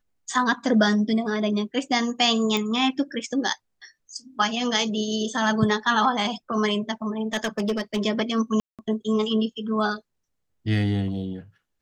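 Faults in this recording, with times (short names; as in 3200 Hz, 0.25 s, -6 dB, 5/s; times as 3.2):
2.57 pop -11 dBFS
7.33–7.99 clipped -19.5 dBFS
8.6–8.79 gap 0.187 s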